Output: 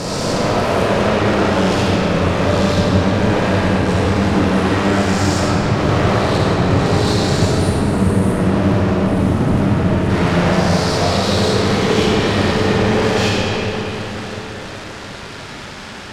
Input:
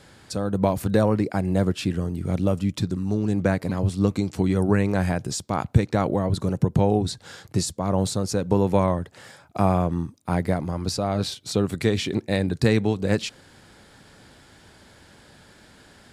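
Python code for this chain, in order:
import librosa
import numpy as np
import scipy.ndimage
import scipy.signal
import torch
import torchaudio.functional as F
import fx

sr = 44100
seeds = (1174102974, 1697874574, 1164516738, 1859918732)

p1 = fx.spec_swells(x, sr, rise_s=1.72)
p2 = fx.notch(p1, sr, hz=760.0, q=23.0)
p3 = fx.spec_erase(p2, sr, start_s=7.5, length_s=2.59, low_hz=400.0, high_hz=8800.0)
p4 = fx.rider(p3, sr, range_db=10, speed_s=0.5)
p5 = p3 + (p4 * 10.0 ** (0.0 / 20.0))
p6 = fx.leveller(p5, sr, passes=2)
p7 = fx.fuzz(p6, sr, gain_db=34.0, gate_db=-41.0)
p8 = fx.air_absorb(p7, sr, metres=72.0)
p9 = fx.rev_freeverb(p8, sr, rt60_s=4.7, hf_ratio=0.6, predelay_ms=5, drr_db=-6.5)
y = p9 * 10.0 ** (-8.0 / 20.0)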